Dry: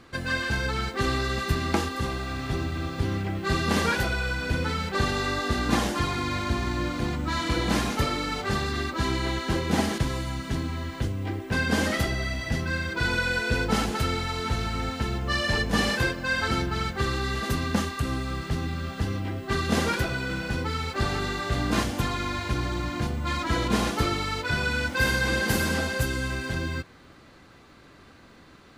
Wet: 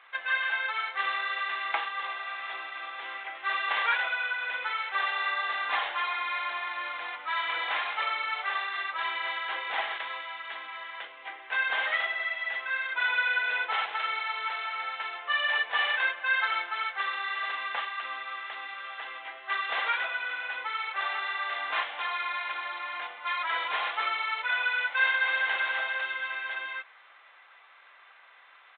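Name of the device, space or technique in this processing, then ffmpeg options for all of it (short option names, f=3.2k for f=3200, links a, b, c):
musical greeting card: -af "aresample=8000,aresample=44100,highpass=f=770:w=0.5412,highpass=f=770:w=1.3066,equalizer=f=2.1k:t=o:w=0.42:g=4.5"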